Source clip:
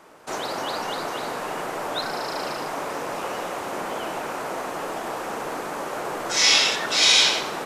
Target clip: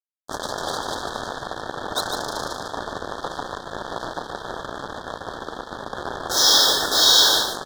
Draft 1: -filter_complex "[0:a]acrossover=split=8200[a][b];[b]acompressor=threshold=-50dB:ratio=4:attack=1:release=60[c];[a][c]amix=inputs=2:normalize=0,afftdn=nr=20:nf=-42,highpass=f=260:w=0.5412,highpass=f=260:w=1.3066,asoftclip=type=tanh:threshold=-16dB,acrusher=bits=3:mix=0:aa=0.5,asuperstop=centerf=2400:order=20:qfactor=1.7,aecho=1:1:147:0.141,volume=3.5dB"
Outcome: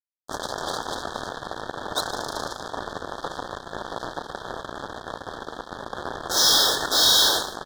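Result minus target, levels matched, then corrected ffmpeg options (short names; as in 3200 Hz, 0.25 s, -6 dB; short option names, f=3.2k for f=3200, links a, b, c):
soft clip: distortion +14 dB; echo-to-direct -11 dB
-filter_complex "[0:a]acrossover=split=8200[a][b];[b]acompressor=threshold=-50dB:ratio=4:attack=1:release=60[c];[a][c]amix=inputs=2:normalize=0,afftdn=nr=20:nf=-42,highpass=f=260:w=0.5412,highpass=f=260:w=1.3066,asoftclip=type=tanh:threshold=-6dB,acrusher=bits=3:mix=0:aa=0.5,asuperstop=centerf=2400:order=20:qfactor=1.7,aecho=1:1:147:0.501,volume=3.5dB"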